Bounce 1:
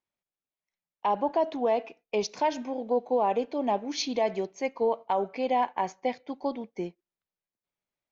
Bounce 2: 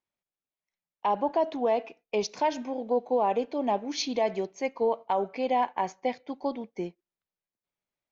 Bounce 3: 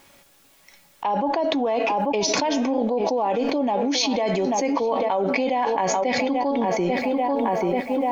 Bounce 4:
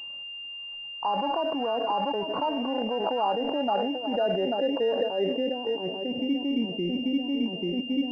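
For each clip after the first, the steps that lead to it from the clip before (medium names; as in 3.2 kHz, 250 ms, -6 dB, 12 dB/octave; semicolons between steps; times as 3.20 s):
no audible change
feedback comb 280 Hz, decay 0.15 s, harmonics all, mix 70%; filtered feedback delay 839 ms, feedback 43%, low-pass 3.1 kHz, level -16.5 dB; level flattener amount 100%; trim +5.5 dB
low-pass sweep 1.1 kHz -> 280 Hz, 2.80–6.73 s; class-D stage that switches slowly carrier 2.8 kHz; trim -8 dB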